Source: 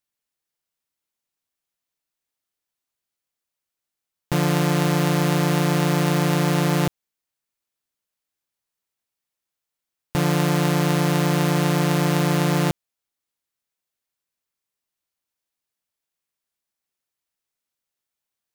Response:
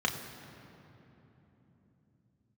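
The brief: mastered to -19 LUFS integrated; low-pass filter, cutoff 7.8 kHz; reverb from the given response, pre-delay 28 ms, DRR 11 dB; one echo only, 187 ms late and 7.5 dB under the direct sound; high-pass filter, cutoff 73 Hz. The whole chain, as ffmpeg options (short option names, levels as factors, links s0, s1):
-filter_complex "[0:a]highpass=73,lowpass=7800,aecho=1:1:187:0.422,asplit=2[s0][s1];[1:a]atrim=start_sample=2205,adelay=28[s2];[s1][s2]afir=irnorm=-1:irlink=0,volume=0.1[s3];[s0][s3]amix=inputs=2:normalize=0,volume=1.5"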